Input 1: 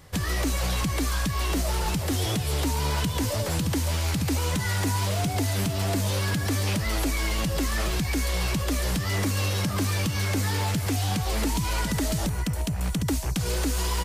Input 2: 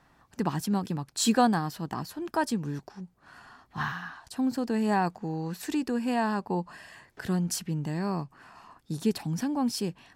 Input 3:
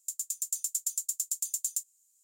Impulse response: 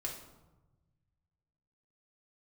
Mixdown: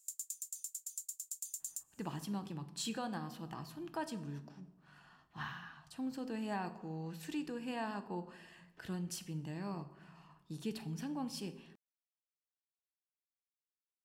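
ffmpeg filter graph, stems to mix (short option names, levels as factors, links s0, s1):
-filter_complex "[1:a]equalizer=f=2900:t=o:w=0.59:g=7,adelay=1600,volume=0.158,asplit=2[s0][s1];[s1]volume=0.668[s2];[2:a]acompressor=threshold=0.0251:ratio=3,volume=1.06[s3];[3:a]atrim=start_sample=2205[s4];[s2][s4]afir=irnorm=-1:irlink=0[s5];[s0][s3][s5]amix=inputs=3:normalize=0,alimiter=level_in=1.78:limit=0.0631:level=0:latency=1:release=264,volume=0.562"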